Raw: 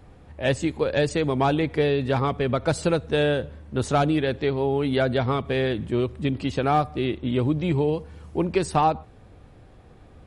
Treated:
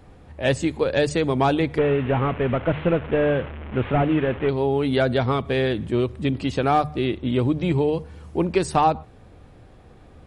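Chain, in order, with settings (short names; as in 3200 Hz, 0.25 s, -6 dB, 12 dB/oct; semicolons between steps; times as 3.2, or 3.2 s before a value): 1.78–4.49 delta modulation 16 kbps, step -30.5 dBFS; notches 50/100/150 Hz; gain +2 dB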